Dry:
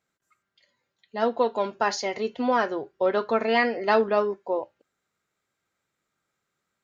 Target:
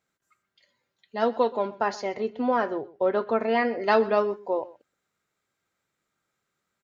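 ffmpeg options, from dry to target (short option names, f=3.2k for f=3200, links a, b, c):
-filter_complex "[0:a]asettb=1/sr,asplit=3[a][b][c];[a]atrim=end=1.554[d];[b]atrim=start=1.55:end=3.8,asetpts=PTS-STARTPTS,afade=t=in:d=0.004:c=qsin,afade=t=out:st=2.246:d=0.004:c=qsin,highshelf=f=2.4k:g=-11.5[e];[c]atrim=start=3.796[f];[d][e]acrossfade=d=0.004:c1=hsin:c2=qsin[g];[g][f]acrossfade=d=0.004:c1=qsin:c2=hsin,aecho=1:1:126:0.1"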